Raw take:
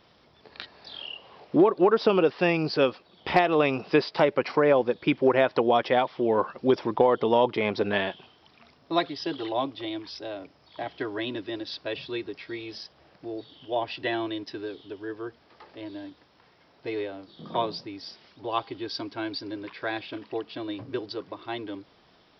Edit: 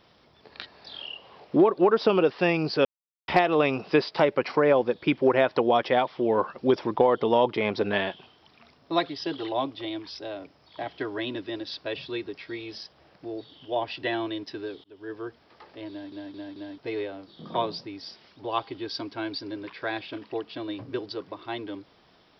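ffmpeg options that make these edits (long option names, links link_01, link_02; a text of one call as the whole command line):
ffmpeg -i in.wav -filter_complex "[0:a]asplit=8[link_01][link_02][link_03][link_04][link_05][link_06][link_07][link_08];[link_01]atrim=end=2.85,asetpts=PTS-STARTPTS,afade=type=out:start_time=2.846:duration=0.004:curve=hsin[link_09];[link_02]atrim=start=2.85:end=3.28,asetpts=PTS-STARTPTS,volume=0[link_10];[link_03]atrim=start=3.28:end=14.84,asetpts=PTS-STARTPTS,afade=type=in:duration=0.004:curve=hsin,afade=type=out:start_time=11.556:duration=0.004:curve=hsin[link_11];[link_04]atrim=start=14.84:end=16.122,asetpts=PTS-STARTPTS,afade=type=in:duration=0.31[link_12];[link_05]atrim=start=15.898:end=16.122[link_13];[link_06]atrim=start=15.898:end=16.122[link_14];[link_07]atrim=start=15.898:end=16.122[link_15];[link_08]atrim=start=16.778[link_16];[link_09][link_10][link_11][link_12]concat=n=4:v=0:a=1[link_17];[link_17][link_13]acrossfade=duration=0.004:curve1=hsin:curve2=hsin[link_18];[link_18][link_14]acrossfade=duration=0.004:curve1=hsin:curve2=hsin[link_19];[link_19][link_15]acrossfade=duration=0.004:curve1=hsin:curve2=hsin[link_20];[link_20][link_16]acrossfade=duration=0.004:curve1=hsin:curve2=hsin" out.wav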